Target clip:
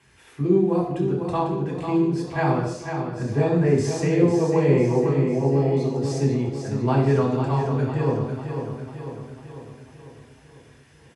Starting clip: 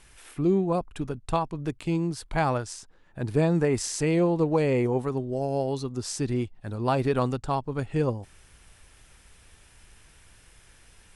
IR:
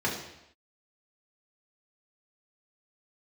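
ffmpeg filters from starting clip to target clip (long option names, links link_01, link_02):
-filter_complex "[0:a]aecho=1:1:497|994|1491|1988|2485|2982|3479:0.447|0.246|0.135|0.0743|0.0409|0.0225|0.0124[link_01];[1:a]atrim=start_sample=2205,afade=type=out:start_time=0.31:duration=0.01,atrim=end_sample=14112[link_02];[link_01][link_02]afir=irnorm=-1:irlink=0,volume=-9dB"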